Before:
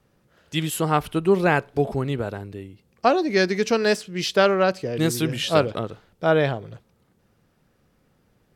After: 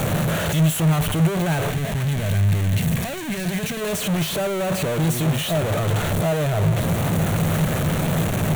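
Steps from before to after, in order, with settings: infinite clipping; spectral gain 1.7–3.81, 270–1500 Hz -7 dB; thirty-one-band EQ 100 Hz +10 dB, 160 Hz +12 dB, 630 Hz +7 dB, 5000 Hz -12 dB; gain -1.5 dB

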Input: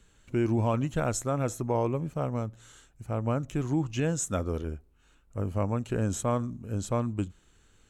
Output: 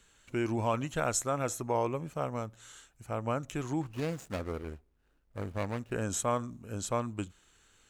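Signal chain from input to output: 3.81–5.92 median filter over 41 samples; low shelf 460 Hz -11 dB; gain +2.5 dB

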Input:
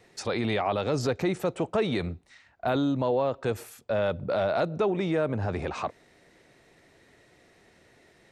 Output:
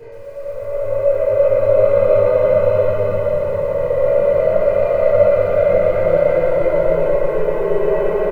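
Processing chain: minimum comb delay 0.46 ms; LPF 1800 Hz 12 dB/oct; bell 560 Hz +14.5 dB 0.42 oct; comb 2 ms, depth 66%; Paulstretch 6.9×, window 0.50 s, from 3.69; resonator 82 Hz, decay 1.5 s, harmonics all, mix 30%; reverb, pre-delay 4 ms, DRR -10.5 dB; lo-fi delay 0.119 s, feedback 80%, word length 7-bit, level -10 dB; gain -7.5 dB

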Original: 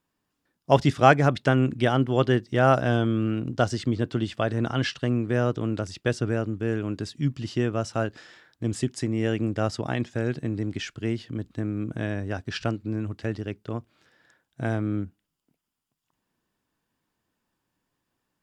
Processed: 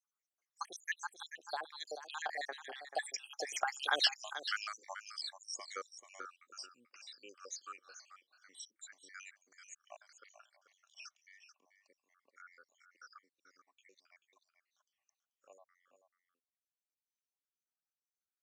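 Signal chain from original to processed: random spectral dropouts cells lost 78%; Doppler pass-by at 4.06, 60 m/s, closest 8.1 m; HPF 650 Hz 24 dB/oct; bell 6200 Hz +13 dB 0.7 oct; compressor 2.5:1, threshold -53 dBFS, peak gain reduction 17.5 dB; notch 940 Hz, Q 6.9; echo 0.436 s -11 dB; gain +18 dB

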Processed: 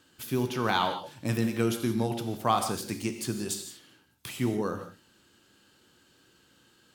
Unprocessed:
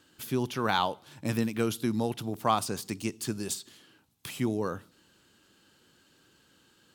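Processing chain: non-linear reverb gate 0.2 s flat, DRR 6 dB

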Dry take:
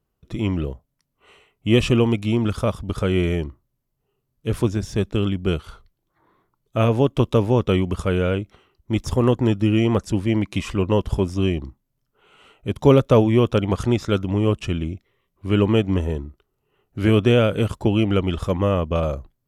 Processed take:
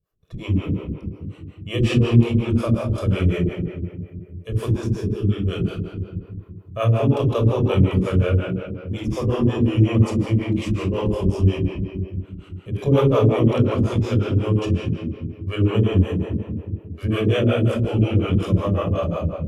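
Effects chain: spectral gain 4.92–5.25, 490–8300 Hz -11 dB; shoebox room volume 3300 m³, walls mixed, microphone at 5.7 m; harmonic tremolo 5.5 Hz, depth 100%, crossover 400 Hz; gain -5.5 dB

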